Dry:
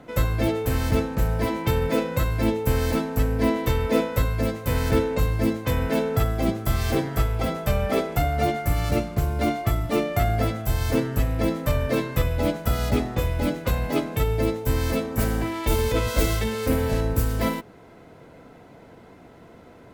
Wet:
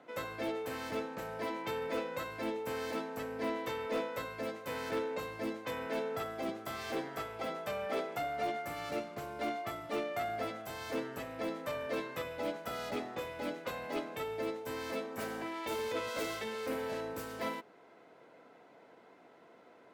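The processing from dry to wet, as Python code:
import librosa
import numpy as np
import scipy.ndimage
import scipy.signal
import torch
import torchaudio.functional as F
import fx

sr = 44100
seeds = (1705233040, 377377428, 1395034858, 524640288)

y = scipy.signal.sosfilt(scipy.signal.bessel(2, 440.0, 'highpass', norm='mag', fs=sr, output='sos'), x)
y = fx.high_shelf(y, sr, hz=7200.0, db=-12.0)
y = 10.0 ** (-19.0 / 20.0) * np.tanh(y / 10.0 ** (-19.0 / 20.0))
y = y * 10.0 ** (-7.5 / 20.0)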